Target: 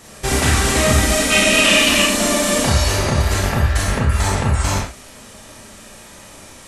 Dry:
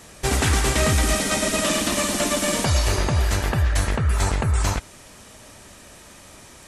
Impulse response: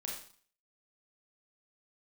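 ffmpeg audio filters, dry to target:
-filter_complex "[0:a]asettb=1/sr,asplit=3[s0][s1][s2];[s0]atrim=end=1.304[s3];[s1]atrim=start=1.3:end=2.02,asetpts=PTS-STARTPTS,afade=t=in:d=0.004:c=qsin,afade=t=out:st=0.716:d=0.004:c=qsin,equalizer=f=2700:t=o:w=0.67:g=13[s4];[s2]atrim=start=2.016[s5];[s3][s4]acrossfade=d=0.004:c1=hsin:c2=qsin[s6];[s6][s5]acrossfade=d=0.004:c1=qsin:c2=hsin[s7];[1:a]atrim=start_sample=2205,atrim=end_sample=6174[s8];[s7][s8]afir=irnorm=-1:irlink=0,volume=1.88"

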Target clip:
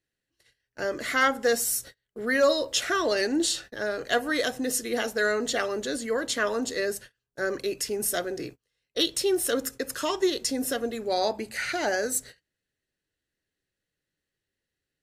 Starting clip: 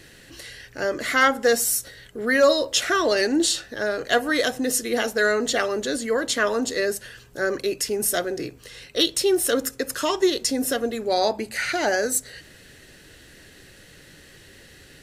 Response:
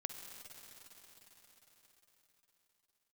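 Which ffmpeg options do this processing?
-af "agate=range=0.0224:threshold=0.0158:ratio=16:detection=peak,volume=0.596"

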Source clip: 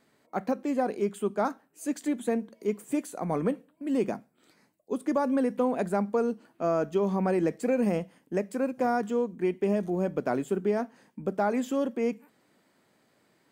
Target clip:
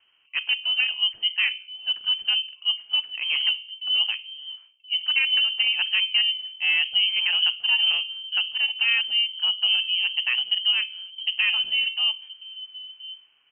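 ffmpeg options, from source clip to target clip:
-filter_complex "[0:a]bandreject=f=62.22:t=h:w=4,bandreject=f=124.44:t=h:w=4,bandreject=f=186.66:t=h:w=4,bandreject=f=248.88:t=h:w=4,bandreject=f=311.1:t=h:w=4,bandreject=f=373.32:t=h:w=4,bandreject=f=435.54:t=h:w=4,bandreject=f=497.76:t=h:w=4,bandreject=f=559.98:t=h:w=4,bandreject=f=622.2:t=h:w=4,bandreject=f=684.42:t=h:w=4,bandreject=f=746.64:t=h:w=4,bandreject=f=808.86:t=h:w=4,bandreject=f=871.08:t=h:w=4,bandreject=f=933.3:t=h:w=4,bandreject=f=995.52:t=h:w=4,bandreject=f=1057.74:t=h:w=4,bandreject=f=1119.96:t=h:w=4,bandreject=f=1182.18:t=h:w=4,bandreject=f=1244.4:t=h:w=4,acrossover=split=300|1300|2200[s0][s1][s2][s3];[s0]aecho=1:1:1025:0.355[s4];[s2]acrusher=bits=6:mix=0:aa=0.000001[s5];[s4][s1][s5][s3]amix=inputs=4:normalize=0,lowpass=f=2800:t=q:w=0.5098,lowpass=f=2800:t=q:w=0.6013,lowpass=f=2800:t=q:w=0.9,lowpass=f=2800:t=q:w=2.563,afreqshift=-3300,volume=1.68"

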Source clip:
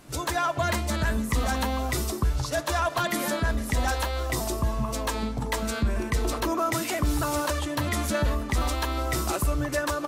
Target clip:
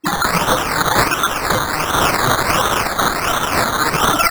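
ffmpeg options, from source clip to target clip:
-filter_complex "[0:a]lowpass=12000,asplit=2[s0][s1];[s1]asoftclip=type=tanh:threshold=0.0398,volume=0.251[s2];[s0][s2]amix=inputs=2:normalize=0,bandreject=f=60:t=h:w=6,bandreject=f=120:t=h:w=6,bandreject=f=180:t=h:w=6,bandreject=f=240:t=h:w=6,bandreject=f=300:t=h:w=6,bandreject=f=360:t=h:w=6,bandreject=f=420:t=h:w=6,bandreject=f=480:t=h:w=6,bandreject=f=540:t=h:w=6,bandreject=f=600:t=h:w=6,dynaudnorm=f=170:g=11:m=1.88,equalizer=f=125:t=o:w=1:g=8,equalizer=f=250:t=o:w=1:g=-5,equalizer=f=500:t=o:w=1:g=12,equalizer=f=1000:t=o:w=1:g=-7,equalizer=f=2000:t=o:w=1:g=9,equalizer=f=4000:t=o:w=1:g=7,equalizer=f=8000:t=o:w=1:g=7,afftdn=nr=32:nf=-23,aeval=exprs='(mod(8.41*val(0)+1,2)-1)/8.41':c=same,acontrast=88,aecho=1:1:86|172|258:0.141|0.0579|0.0237,asetrate=103194,aresample=44100,highshelf=f=1900:t=q:w=3:g=-12.5,acrusher=samples=13:mix=1:aa=0.000001:lfo=1:lforange=7.8:lforate=1.4,volume=1.33"

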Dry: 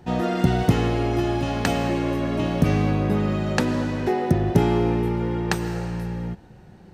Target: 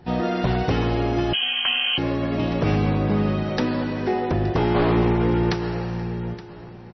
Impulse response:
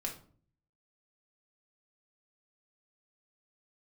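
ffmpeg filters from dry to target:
-filter_complex "[0:a]asettb=1/sr,asplit=3[s0][s1][s2];[s0]atrim=end=3.444[s3];[s1]atrim=start=3.44:end=4.2,asetpts=PTS-STARTPTS,afade=t=in:d=0.004:c=qsin,afade=t=out:st=0.756:d=0.004:c=qsin,highpass=f=130:p=1[s4];[s2]atrim=start=4.196[s5];[s3][s4]acrossfade=d=0.004:c1=hsin:c2=qsin[s6];[s6][s5]acrossfade=d=0.004:c1=qsin:c2=hsin,asplit=3[s7][s8][s9];[s7]afade=t=out:st=4.74:d=0.02[s10];[s8]acontrast=33,afade=t=in:st=4.74:d=0.02,afade=t=out:st=5.5:d=0.02[s11];[s9]afade=t=in:st=5.5:d=0.02[s12];[s10][s11][s12]amix=inputs=3:normalize=0,aeval=exprs='0.211*(abs(mod(val(0)/0.211+3,4)-2)-1)':c=same,aecho=1:1:871|1742|2613:0.15|0.0524|0.0183,asplit=2[s13][s14];[1:a]atrim=start_sample=2205[s15];[s14][s15]afir=irnorm=-1:irlink=0,volume=0.106[s16];[s13][s16]amix=inputs=2:normalize=0,asettb=1/sr,asplit=3[s17][s18][s19];[s17]atrim=end=1.334[s20];[s18]atrim=start=1.33:end=1.98,asetpts=PTS-STARTPTS,afade=t=in:d=0.004:c=qsin,afade=t=out:st=0.646:d=0.004:c=qsin,lowpass=f=2800:t=q:w=0.5098,lowpass=f=2800:t=q:w=0.6013,lowpass=f=2800:t=q:w=0.9,lowpass=f=2800:t=q:w=2.563,afreqshift=-3300[s21];[s19]atrim=start=1.976[s22];[s20][s21]acrossfade=d=0.004:c1=hsin:c2=qsin[s23];[s23][s22]acrossfade=d=0.004:c1=qsin:c2=hsin" -ar 22050 -c:a libmp3lame -b:a 24k

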